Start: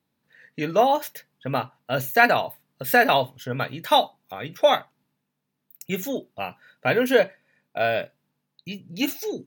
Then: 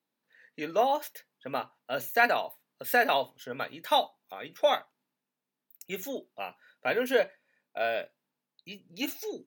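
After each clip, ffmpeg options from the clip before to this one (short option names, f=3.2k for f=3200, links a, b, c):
-af "highpass=280,volume=-6.5dB"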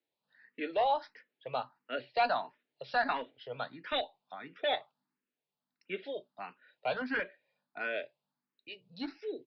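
-filter_complex "[0:a]acrossover=split=170|670|3100[a][b][c][d];[b]aeval=exprs='0.0398*(abs(mod(val(0)/0.0398+3,4)-2)-1)':c=same[e];[a][e][c][d]amix=inputs=4:normalize=0,aresample=11025,aresample=44100,asplit=2[f][g];[g]afreqshift=1.5[h];[f][h]amix=inputs=2:normalize=1,volume=-1dB"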